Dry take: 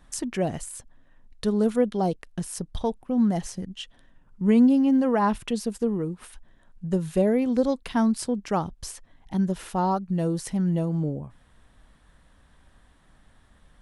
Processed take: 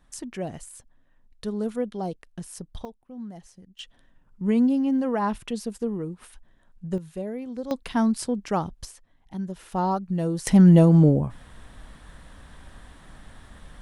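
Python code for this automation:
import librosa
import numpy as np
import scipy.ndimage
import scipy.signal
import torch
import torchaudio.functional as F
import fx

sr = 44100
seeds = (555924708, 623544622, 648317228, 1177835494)

y = fx.gain(x, sr, db=fx.steps((0.0, -6.0), (2.85, -16.0), (3.79, -3.0), (6.98, -11.0), (7.71, 0.0), (8.85, -7.5), (9.72, -0.5), (10.47, 11.0)))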